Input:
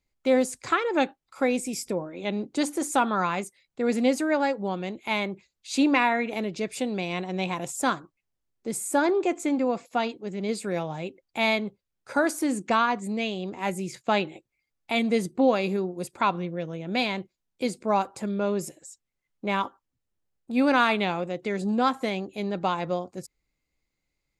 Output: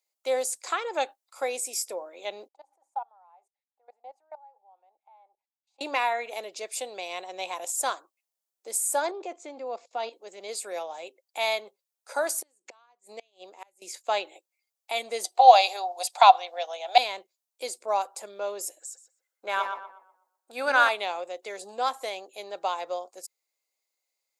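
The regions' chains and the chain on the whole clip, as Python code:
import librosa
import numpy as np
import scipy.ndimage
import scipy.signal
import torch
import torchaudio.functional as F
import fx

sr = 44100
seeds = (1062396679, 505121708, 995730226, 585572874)

y = fx.chain(x, sr, fx.level_steps(step_db=22),
    fx.bandpass_q(hz=820.0, q=9.0), at=(2.48, 5.81))
y = fx.chain(y, sr, fx.lowpass(hz=6100.0, slope=24),
    fx.low_shelf(hz=440.0, db=9.0),
    fx.level_steps(step_db=13), at=(9.11, 10.13))
y = fx.chain(y, sr, fx.gate_flip(shuts_db=-20.0, range_db=-28),
    fx.upward_expand(threshold_db=-41.0, expansion=1.5), at=(12.4, 13.82))
y = fx.chain(y, sr, fx.highpass_res(hz=740.0, q=9.2),
    fx.peak_eq(hz=3900.0, db=14.5, octaves=1.6), at=(15.24, 16.98))
y = fx.chain(y, sr, fx.peak_eq(hz=1500.0, db=12.0, octaves=0.4),
    fx.echo_tape(ms=123, feedback_pct=38, wet_db=-4.5, lp_hz=2200.0, drive_db=9.0, wow_cents=31), at=(18.8, 20.89))
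y = scipy.signal.sosfilt(scipy.signal.butter(4, 610.0, 'highpass', fs=sr, output='sos'), y)
y = fx.peak_eq(y, sr, hz=1700.0, db=-14.0, octaves=2.8)
y = y * librosa.db_to_amplitude(8.0)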